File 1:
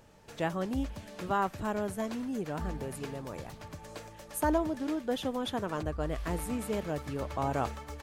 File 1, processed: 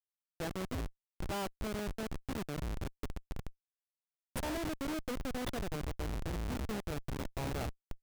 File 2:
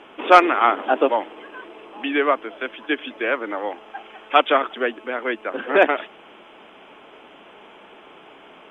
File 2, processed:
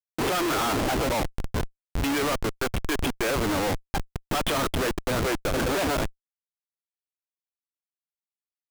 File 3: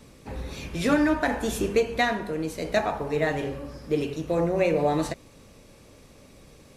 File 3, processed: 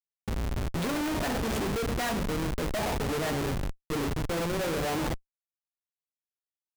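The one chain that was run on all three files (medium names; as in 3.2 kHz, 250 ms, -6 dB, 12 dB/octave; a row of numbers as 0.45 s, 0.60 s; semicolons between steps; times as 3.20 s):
Schmitt trigger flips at -31 dBFS; trim -2 dB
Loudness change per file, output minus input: -6.0 LU, -6.5 LU, -4.5 LU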